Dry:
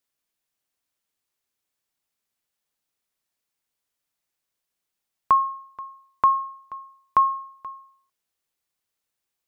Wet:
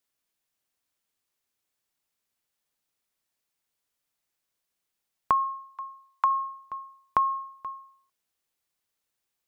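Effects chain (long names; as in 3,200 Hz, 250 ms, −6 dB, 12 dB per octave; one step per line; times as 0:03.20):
0:05.44–0:06.31: Chebyshev high-pass filter 650 Hz, order 10
downward compressor, threshold −20 dBFS, peak gain reduction 6.5 dB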